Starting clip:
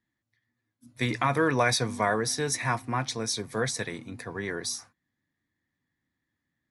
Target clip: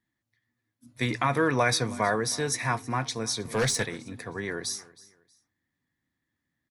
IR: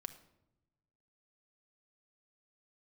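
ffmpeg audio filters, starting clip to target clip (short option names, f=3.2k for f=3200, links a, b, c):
-filter_complex "[0:a]aecho=1:1:318|636:0.0891|0.025,asettb=1/sr,asplit=3[a][b][c];[a]atrim=end=3.454[d];[b]atrim=start=3.45:end=3.86,asetpts=PTS-STARTPTS,afade=t=in:d=0.004:c=qsin,afade=t=out:st=0.406:d=0.004:c=qsin,aeval=exprs='0.158*(cos(1*acos(clip(val(0)/0.158,-1,1)))-cos(1*PI/2))+0.0355*(cos(5*acos(clip(val(0)/0.158,-1,1)))-cos(5*PI/2))+0.00501*(cos(6*acos(clip(val(0)/0.158,-1,1)))-cos(6*PI/2))':c=same[e];[c]atrim=start=3.856[f];[d][e]acrossfade=d=0.004:c1=hsin:c2=qsin[g];[g][f]acrossfade=d=0.004:c1=qsin:c2=hsin"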